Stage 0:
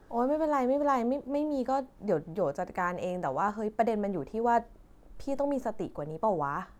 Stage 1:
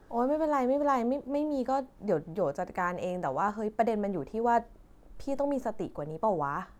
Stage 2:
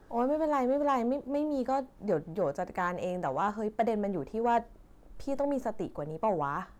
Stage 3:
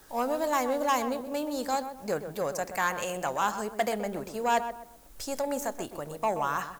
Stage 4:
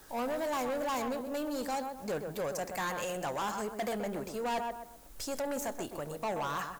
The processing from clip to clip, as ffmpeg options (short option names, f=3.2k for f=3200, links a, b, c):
-af anull
-af "asoftclip=type=tanh:threshold=-17.5dB"
-filter_complex "[0:a]tiltshelf=f=800:g=-4.5,asplit=2[a][b];[b]adelay=127,lowpass=f=1.5k:p=1,volume=-9dB,asplit=2[c][d];[d]adelay=127,lowpass=f=1.5k:p=1,volume=0.34,asplit=2[e][f];[f]adelay=127,lowpass=f=1.5k:p=1,volume=0.34,asplit=2[g][h];[h]adelay=127,lowpass=f=1.5k:p=1,volume=0.34[i];[a][c][e][g][i]amix=inputs=5:normalize=0,crystalizer=i=4.5:c=0"
-af "asoftclip=type=tanh:threshold=-30dB"